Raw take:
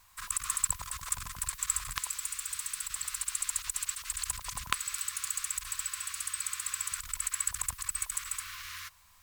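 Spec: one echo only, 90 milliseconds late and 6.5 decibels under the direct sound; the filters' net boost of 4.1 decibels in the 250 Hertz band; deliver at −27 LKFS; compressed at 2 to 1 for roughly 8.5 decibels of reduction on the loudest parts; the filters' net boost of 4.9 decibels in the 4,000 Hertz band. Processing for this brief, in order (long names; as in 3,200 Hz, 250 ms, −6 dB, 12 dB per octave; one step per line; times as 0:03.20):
parametric band 250 Hz +6 dB
parametric band 4,000 Hz +6 dB
downward compressor 2 to 1, threshold −39 dBFS
single-tap delay 90 ms −6.5 dB
level +10 dB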